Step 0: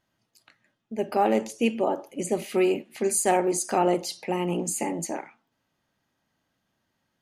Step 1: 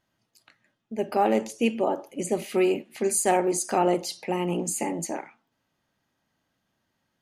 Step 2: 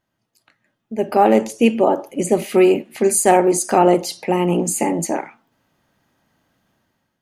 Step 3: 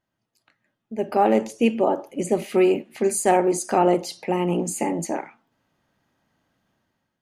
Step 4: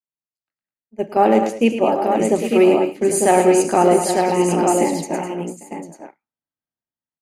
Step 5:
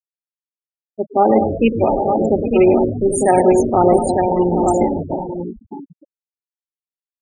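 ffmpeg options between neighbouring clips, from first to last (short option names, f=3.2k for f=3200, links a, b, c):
-af anull
-af "equalizer=f=4.5k:t=o:w=2.3:g=-4,dynaudnorm=f=610:g=3:m=11dB,volume=1dB"
-af "highshelf=f=10k:g=-7.5,volume=-5dB"
-filter_complex "[0:a]asplit=2[a][b];[b]aecho=0:1:109|206|226|799|898:0.376|0.282|0.126|0.299|0.596[c];[a][c]amix=inputs=2:normalize=0,agate=range=-33dB:threshold=-21dB:ratio=3:detection=peak,volume=3.5dB"
-filter_complex "[0:a]asplit=2[a][b];[b]asplit=5[c][d][e][f][g];[c]adelay=145,afreqshift=-130,volume=-11dB[h];[d]adelay=290,afreqshift=-260,volume=-17.2dB[i];[e]adelay=435,afreqshift=-390,volume=-23.4dB[j];[f]adelay=580,afreqshift=-520,volume=-29.6dB[k];[g]adelay=725,afreqshift=-650,volume=-35.8dB[l];[h][i][j][k][l]amix=inputs=5:normalize=0[m];[a][m]amix=inputs=2:normalize=0,afftfilt=real='re*gte(hypot(re,im),0.158)':imag='im*gte(hypot(re,im),0.158)':win_size=1024:overlap=0.75,volume=1dB"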